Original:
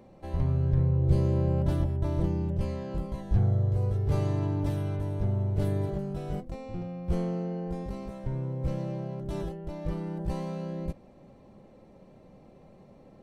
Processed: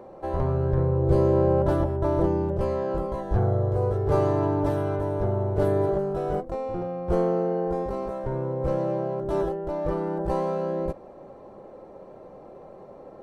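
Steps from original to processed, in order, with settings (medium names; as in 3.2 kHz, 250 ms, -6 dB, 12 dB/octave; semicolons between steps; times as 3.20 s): high-order bell 730 Hz +12.5 dB 2.6 oct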